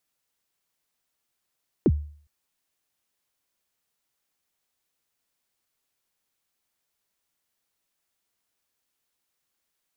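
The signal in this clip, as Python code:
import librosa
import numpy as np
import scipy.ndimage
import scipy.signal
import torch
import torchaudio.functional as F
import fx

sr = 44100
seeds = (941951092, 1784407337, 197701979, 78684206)

y = fx.drum_kick(sr, seeds[0], length_s=0.41, level_db=-12.5, start_hz=440.0, end_hz=74.0, sweep_ms=47.0, decay_s=0.49, click=False)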